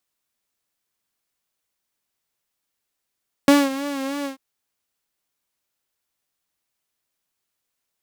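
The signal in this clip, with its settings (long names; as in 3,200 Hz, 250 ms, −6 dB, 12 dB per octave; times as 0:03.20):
subtractive patch with vibrato C#5, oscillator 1 saw, sub −2 dB, noise −22.5 dB, filter highpass, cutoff 120 Hz, Q 8.5, filter envelope 0.5 octaves, attack 2.2 ms, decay 0.21 s, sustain −15 dB, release 0.12 s, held 0.77 s, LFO 3.2 Hz, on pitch 62 cents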